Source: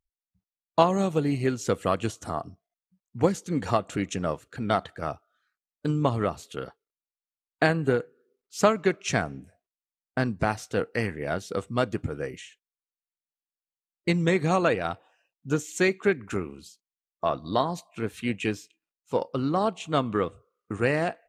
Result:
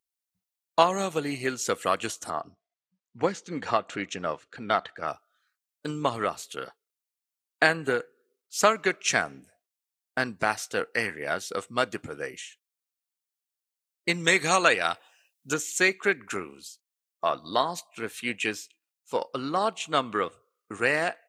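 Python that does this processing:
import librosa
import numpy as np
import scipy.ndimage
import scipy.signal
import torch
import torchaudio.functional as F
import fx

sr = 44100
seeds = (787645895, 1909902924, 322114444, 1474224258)

y = fx.air_absorb(x, sr, metres=120.0, at=(2.3, 5.08))
y = fx.high_shelf(y, sr, hz=2400.0, db=9.0, at=(14.24, 15.54))
y = fx.dynamic_eq(y, sr, hz=1700.0, q=1.0, threshold_db=-41.0, ratio=4.0, max_db=4)
y = fx.highpass(y, sr, hz=480.0, slope=6)
y = fx.high_shelf(y, sr, hz=3700.0, db=7.5)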